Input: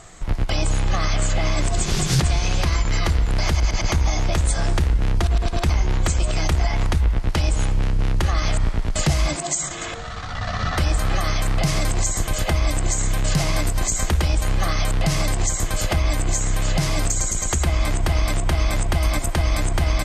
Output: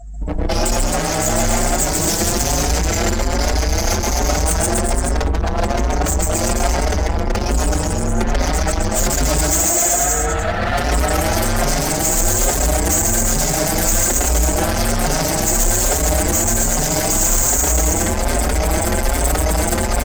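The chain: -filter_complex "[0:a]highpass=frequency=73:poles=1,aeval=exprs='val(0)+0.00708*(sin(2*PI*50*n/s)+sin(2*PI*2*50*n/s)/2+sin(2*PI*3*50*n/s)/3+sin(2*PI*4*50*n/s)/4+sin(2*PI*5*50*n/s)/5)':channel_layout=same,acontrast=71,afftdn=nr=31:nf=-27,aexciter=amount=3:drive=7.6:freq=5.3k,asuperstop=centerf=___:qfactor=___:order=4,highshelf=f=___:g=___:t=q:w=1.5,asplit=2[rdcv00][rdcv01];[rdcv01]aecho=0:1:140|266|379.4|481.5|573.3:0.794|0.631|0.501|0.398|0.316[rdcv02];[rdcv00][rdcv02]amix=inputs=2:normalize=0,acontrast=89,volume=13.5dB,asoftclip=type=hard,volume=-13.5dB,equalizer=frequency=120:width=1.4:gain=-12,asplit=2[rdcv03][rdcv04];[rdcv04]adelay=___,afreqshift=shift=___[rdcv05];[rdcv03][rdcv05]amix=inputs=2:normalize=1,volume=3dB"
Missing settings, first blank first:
1100, 2.1, 1.7k, -7.5, 5.2, 1.2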